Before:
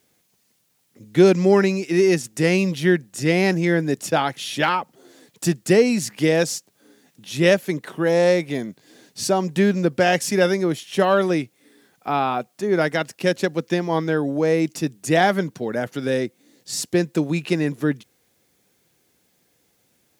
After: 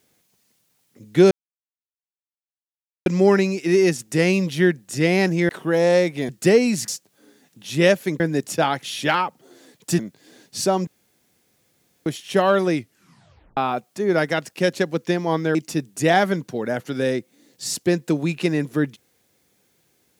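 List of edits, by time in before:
1.31 insert silence 1.75 s
3.74–5.53 swap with 7.82–8.62
6.12–6.5 cut
9.5–10.69 room tone
11.4 tape stop 0.80 s
14.18–14.62 cut

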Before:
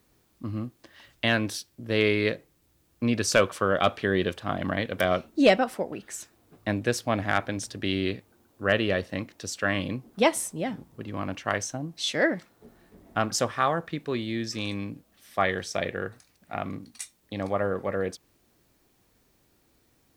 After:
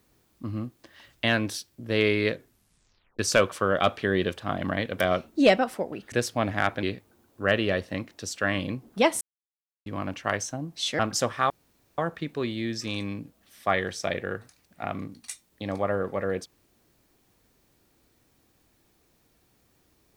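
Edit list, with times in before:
2.32 tape stop 0.87 s
6.12–6.83 cut
7.54–8.04 cut
10.42–11.07 mute
12.2–13.18 cut
13.69 insert room tone 0.48 s

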